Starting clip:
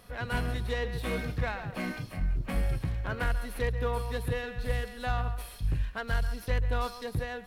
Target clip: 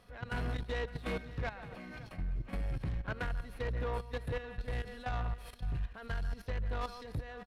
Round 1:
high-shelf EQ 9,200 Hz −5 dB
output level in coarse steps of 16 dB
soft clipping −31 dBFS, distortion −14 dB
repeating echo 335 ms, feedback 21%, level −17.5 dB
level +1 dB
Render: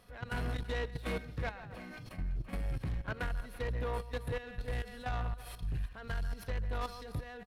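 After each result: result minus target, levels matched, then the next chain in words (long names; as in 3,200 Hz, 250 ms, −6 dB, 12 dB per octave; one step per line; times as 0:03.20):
echo 228 ms early; 8,000 Hz band +4.0 dB
high-shelf EQ 9,200 Hz −5 dB
output level in coarse steps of 16 dB
soft clipping −31 dBFS, distortion −14 dB
repeating echo 563 ms, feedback 21%, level −17.5 dB
level +1 dB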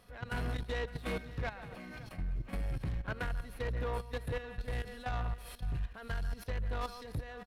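8,000 Hz band +4.0 dB
high-shelf EQ 9,200 Hz −14.5 dB
output level in coarse steps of 16 dB
soft clipping −31 dBFS, distortion −14 dB
repeating echo 563 ms, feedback 21%, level −17.5 dB
level +1 dB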